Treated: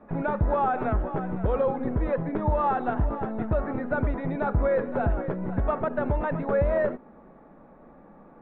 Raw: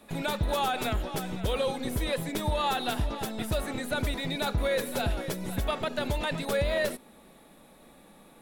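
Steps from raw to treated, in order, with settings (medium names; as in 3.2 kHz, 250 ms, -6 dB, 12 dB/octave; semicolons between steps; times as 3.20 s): low-pass 1.5 kHz 24 dB/octave; trim +4.5 dB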